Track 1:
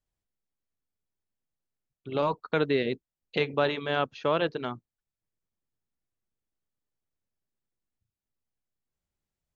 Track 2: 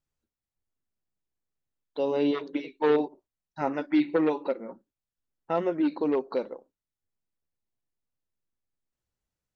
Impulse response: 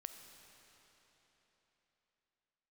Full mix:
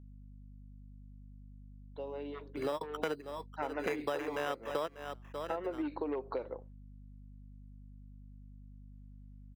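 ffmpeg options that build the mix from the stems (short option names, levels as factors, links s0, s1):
-filter_complex "[0:a]acrusher=samples=10:mix=1:aa=0.000001,adelay=500,volume=1.19,asplit=2[s0][s1];[s1]volume=0.168[s2];[1:a]lowshelf=f=150:g=-12,acompressor=threshold=0.0447:ratio=8,volume=0.891,afade=t=in:st=2.99:d=0.56:silence=0.354813,asplit=2[s3][s4];[s4]apad=whole_len=443347[s5];[s0][s5]sidechaingate=range=0.0158:threshold=0.00112:ratio=16:detection=peak[s6];[s2]aecho=0:1:592:1[s7];[s6][s3][s7]amix=inputs=3:normalize=0,acrossover=split=250 3200:gain=0.251 1 0.224[s8][s9][s10];[s8][s9][s10]amix=inputs=3:normalize=0,aeval=exprs='val(0)+0.00282*(sin(2*PI*50*n/s)+sin(2*PI*2*50*n/s)/2+sin(2*PI*3*50*n/s)/3+sin(2*PI*4*50*n/s)/4+sin(2*PI*5*50*n/s)/5)':c=same,acompressor=threshold=0.0251:ratio=6"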